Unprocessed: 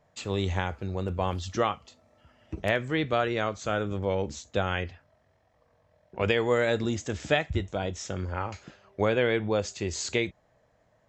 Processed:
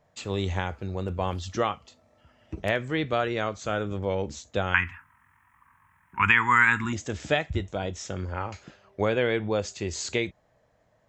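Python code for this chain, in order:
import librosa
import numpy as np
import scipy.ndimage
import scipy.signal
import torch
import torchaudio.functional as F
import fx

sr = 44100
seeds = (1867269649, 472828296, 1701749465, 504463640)

y = fx.curve_eq(x, sr, hz=(270.0, 600.0, 950.0, 1400.0, 2500.0, 4400.0, 9600.0), db=(0, -30, 14, 14, 10, -15, 15), at=(4.74, 6.93))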